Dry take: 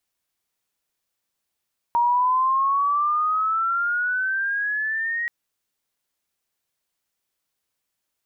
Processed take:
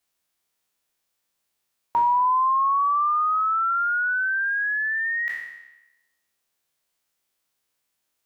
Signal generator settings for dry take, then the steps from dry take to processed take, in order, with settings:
sweep logarithmic 940 Hz -> 1.9 kHz -16 dBFS -> -23 dBFS 3.33 s
spectral sustain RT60 1.01 s; bass shelf 180 Hz -3.5 dB

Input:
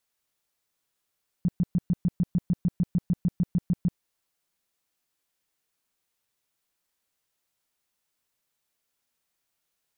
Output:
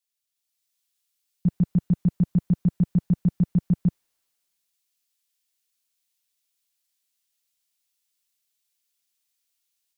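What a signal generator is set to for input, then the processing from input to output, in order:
tone bursts 177 Hz, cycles 6, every 0.15 s, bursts 17, -19 dBFS
level rider gain up to 5 dB; three bands expanded up and down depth 40%

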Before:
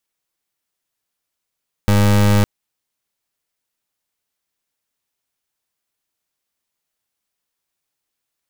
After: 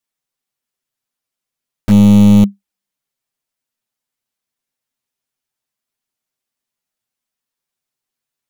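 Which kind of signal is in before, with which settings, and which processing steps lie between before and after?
pulse 102 Hz, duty 29% -12.5 dBFS 0.56 s
peaking EQ 200 Hz +14 dB 0.22 oct; touch-sensitive flanger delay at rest 7.8 ms, full sweep at -6.5 dBFS

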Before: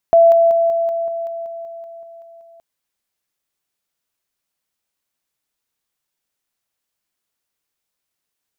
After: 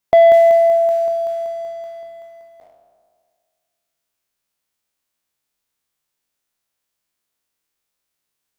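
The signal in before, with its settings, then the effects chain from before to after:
level ladder 670 Hz -6 dBFS, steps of -3 dB, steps 13, 0.19 s 0.00 s
spectral sustain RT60 1.91 s; waveshaping leveller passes 1

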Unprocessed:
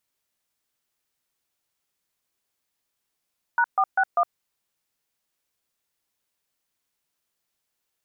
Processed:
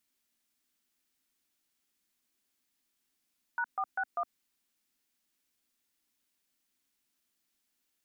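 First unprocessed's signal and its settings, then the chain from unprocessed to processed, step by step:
DTMF "#461", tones 62 ms, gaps 135 ms, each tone -19.5 dBFS
graphic EQ 125/250/500/1000 Hz -11/+10/-7/-4 dB; peak limiter -25.5 dBFS

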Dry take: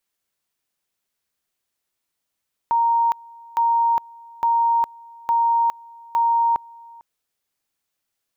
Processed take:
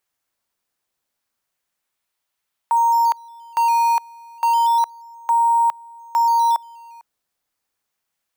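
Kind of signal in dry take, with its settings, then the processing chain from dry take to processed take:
two-level tone 930 Hz -15 dBFS, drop 25 dB, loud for 0.41 s, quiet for 0.45 s, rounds 5
high-pass 630 Hz 24 dB/octave; in parallel at -9 dB: decimation with a swept rate 9×, swing 100% 0.31 Hz

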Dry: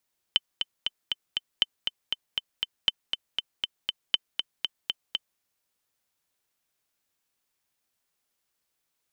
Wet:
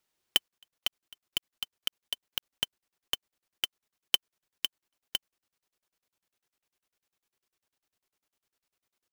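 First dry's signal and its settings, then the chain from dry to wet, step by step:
metronome 238 bpm, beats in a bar 5, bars 4, 3.06 kHz, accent 6.5 dB -7 dBFS
peaking EQ 370 Hz +5.5 dB 0.36 oct; crackling interface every 0.10 s, samples 2048, zero, from 0.48 s; sampling jitter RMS 0.021 ms

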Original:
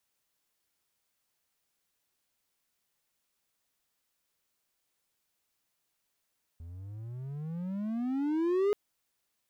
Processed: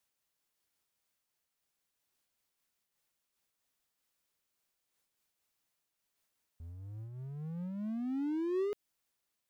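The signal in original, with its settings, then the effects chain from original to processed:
gliding synth tone triangle, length 2.13 s, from 80.9 Hz, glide +28.5 st, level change +19 dB, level -21.5 dB
dynamic bell 920 Hz, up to -5 dB, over -47 dBFS, Q 0.81; random flutter of the level, depth 55%

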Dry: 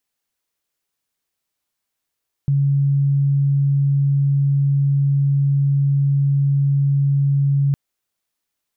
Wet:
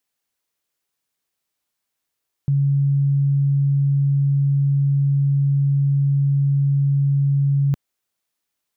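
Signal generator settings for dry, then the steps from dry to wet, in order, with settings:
tone sine 140 Hz -13.5 dBFS 5.26 s
bass shelf 60 Hz -6 dB

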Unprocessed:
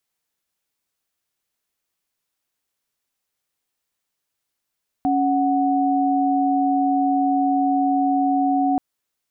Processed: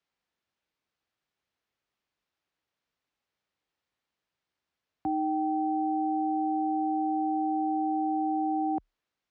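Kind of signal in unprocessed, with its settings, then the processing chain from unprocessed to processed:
chord C#4/F#5 sine, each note -19 dBFS 3.73 s
peak limiter -22 dBFS; frequency shift +34 Hz; distance through air 170 m

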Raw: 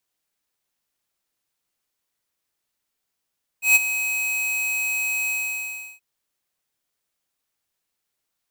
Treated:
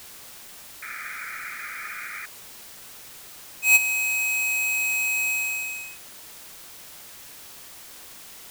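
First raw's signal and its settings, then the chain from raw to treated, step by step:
ADSR square 2.54 kHz, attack 135 ms, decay 25 ms, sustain -12 dB, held 1.67 s, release 706 ms -12.5 dBFS
added noise white -44 dBFS; painted sound noise, 0.82–2.26 s, 1.2–2.5 kHz -36 dBFS

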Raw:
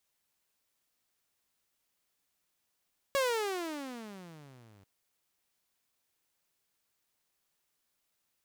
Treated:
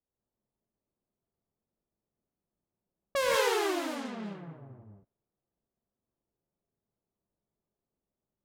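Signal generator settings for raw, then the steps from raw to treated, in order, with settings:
gliding synth tone saw, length 1.69 s, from 563 Hz, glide -31 st, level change -32.5 dB, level -23 dB
local Wiener filter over 9 samples; gated-style reverb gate 220 ms rising, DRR -4 dB; level-controlled noise filter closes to 490 Hz, open at -30.5 dBFS

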